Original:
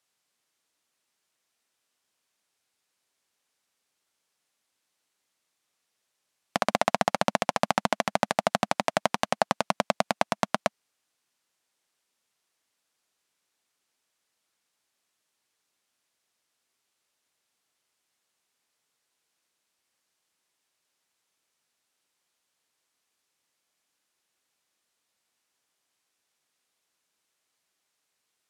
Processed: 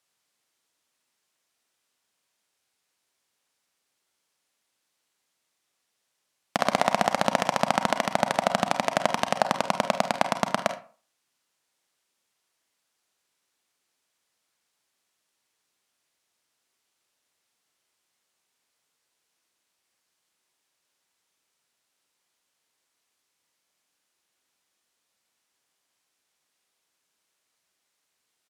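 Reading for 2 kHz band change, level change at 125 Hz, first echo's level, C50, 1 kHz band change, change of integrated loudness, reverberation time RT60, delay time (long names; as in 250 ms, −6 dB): +1.5 dB, +1.5 dB, −13.5 dB, 12.5 dB, +2.0 dB, +1.5 dB, 0.40 s, 49 ms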